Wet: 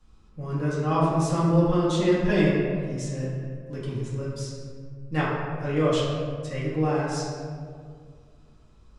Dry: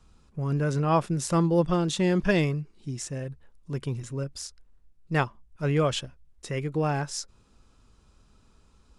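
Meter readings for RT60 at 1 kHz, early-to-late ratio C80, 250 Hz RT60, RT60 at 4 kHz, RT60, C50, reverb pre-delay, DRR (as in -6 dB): 1.8 s, 1.5 dB, 2.4 s, 1.0 s, 2.1 s, -0.5 dB, 4 ms, -9.0 dB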